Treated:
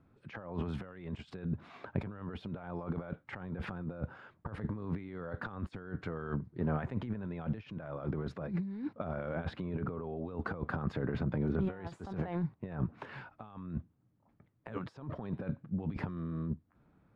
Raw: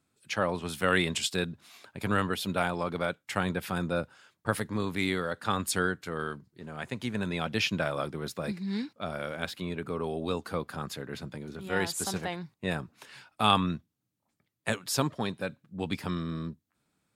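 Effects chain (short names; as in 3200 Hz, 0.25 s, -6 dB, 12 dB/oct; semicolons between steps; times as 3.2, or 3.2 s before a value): negative-ratio compressor -41 dBFS, ratio -1; LPF 1300 Hz 12 dB/oct; low shelf 100 Hz +10.5 dB; gain +1 dB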